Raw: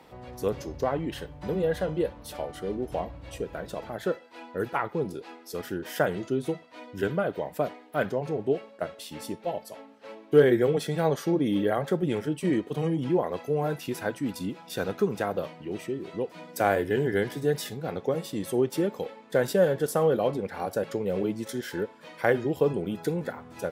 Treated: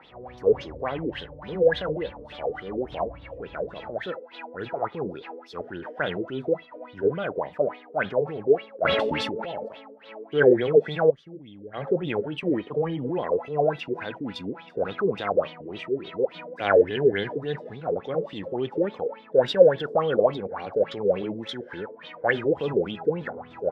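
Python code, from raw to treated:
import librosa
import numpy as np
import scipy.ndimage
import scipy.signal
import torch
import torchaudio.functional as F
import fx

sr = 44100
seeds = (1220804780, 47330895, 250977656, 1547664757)

y = fx.tone_stack(x, sr, knobs='10-0-1', at=(11.09, 11.73), fade=0.02)
y = fx.transient(y, sr, attack_db=-6, sustain_db=2)
y = fx.quant_dither(y, sr, seeds[0], bits=8, dither='none', at=(22.21, 22.91))
y = fx.filter_lfo_lowpass(y, sr, shape='sine', hz=3.5, low_hz=430.0, high_hz=3700.0, q=7.7)
y = fx.sustainer(y, sr, db_per_s=21.0, at=(8.83, 9.67), fade=0.02)
y = F.gain(torch.from_numpy(y), -2.5).numpy()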